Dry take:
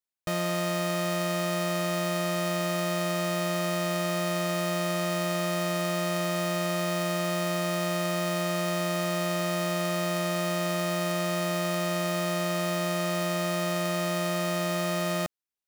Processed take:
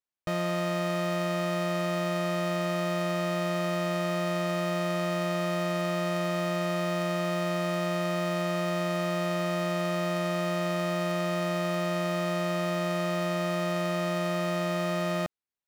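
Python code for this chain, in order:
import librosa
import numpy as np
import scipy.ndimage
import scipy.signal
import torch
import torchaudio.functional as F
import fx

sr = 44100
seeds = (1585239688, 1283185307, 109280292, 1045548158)

y = fx.high_shelf(x, sr, hz=5300.0, db=-12.0)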